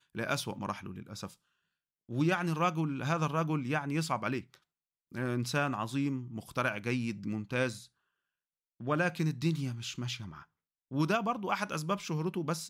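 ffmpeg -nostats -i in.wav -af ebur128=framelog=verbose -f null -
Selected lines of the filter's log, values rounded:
Integrated loudness:
  I:         -33.4 LUFS
  Threshold: -44.0 LUFS
Loudness range:
  LRA:         2.7 LU
  Threshold: -54.3 LUFS
  LRA low:   -35.5 LUFS
  LRA high:  -32.8 LUFS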